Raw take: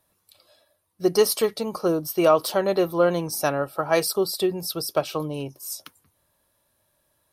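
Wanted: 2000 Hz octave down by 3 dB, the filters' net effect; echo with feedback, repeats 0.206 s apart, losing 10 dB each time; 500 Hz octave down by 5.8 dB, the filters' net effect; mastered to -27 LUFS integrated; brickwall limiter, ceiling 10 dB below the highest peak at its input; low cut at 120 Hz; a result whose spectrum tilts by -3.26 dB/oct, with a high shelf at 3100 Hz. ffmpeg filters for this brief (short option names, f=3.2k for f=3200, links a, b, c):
-af "highpass=120,equalizer=f=500:t=o:g=-7.5,equalizer=f=2k:t=o:g=-5,highshelf=f=3.1k:g=4,alimiter=limit=-18dB:level=0:latency=1,aecho=1:1:206|412|618|824:0.316|0.101|0.0324|0.0104,volume=1.5dB"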